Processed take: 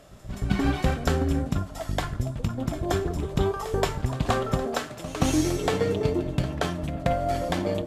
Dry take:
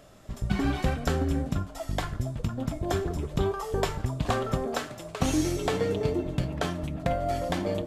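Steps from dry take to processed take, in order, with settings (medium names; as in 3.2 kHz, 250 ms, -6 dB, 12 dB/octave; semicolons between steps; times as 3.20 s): Chebyshev shaper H 7 -33 dB, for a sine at -11 dBFS; pre-echo 175 ms -14.5 dB; trim +3 dB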